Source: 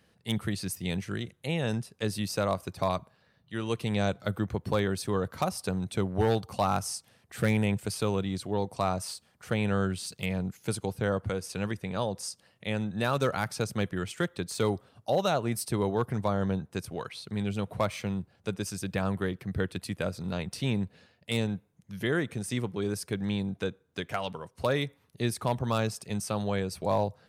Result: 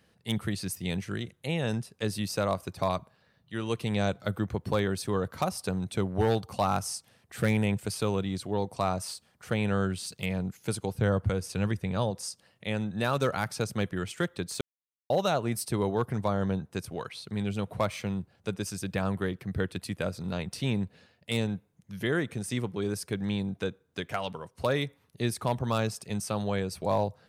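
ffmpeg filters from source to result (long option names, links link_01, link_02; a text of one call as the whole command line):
ffmpeg -i in.wav -filter_complex "[0:a]asettb=1/sr,asplit=3[link_01][link_02][link_03];[link_01]atrim=end=10.954[link_04];[link_02]atrim=start=10.95:end=12.11,asetpts=PTS-STARTPTS,afade=type=in:duration=0.004:curve=qsin,afade=type=out:start_time=1.156:duration=0.004:curve=qsin,lowshelf=frequency=130:gain=10.5[link_05];[link_03]atrim=start=12.106[link_06];[link_04][link_05]acrossfade=duration=0.004:curve1=hsin:curve2=qsin[link_07];[link_07][link_06]acrossfade=duration=0.004:curve1=qsin:curve2=hsin,asplit=3[link_08][link_09][link_10];[link_08]atrim=end=14.61,asetpts=PTS-STARTPTS,afade=type=out:start_time=14.606:duration=0.004:curve=hsin[link_11];[link_09]atrim=start=14.61:end=15.1,asetpts=PTS-STARTPTS,volume=0[link_12];[link_10]atrim=start=15.1,asetpts=PTS-STARTPTS,afade=type=in:duration=0.004:curve=hsin[link_13];[link_11][link_12][link_13]concat=n=3:v=0:a=1" out.wav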